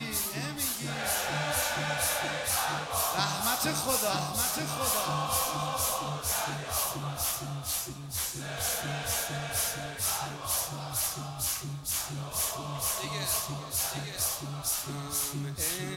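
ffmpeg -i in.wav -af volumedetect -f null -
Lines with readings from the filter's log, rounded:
mean_volume: -32.2 dB
max_volume: -12.3 dB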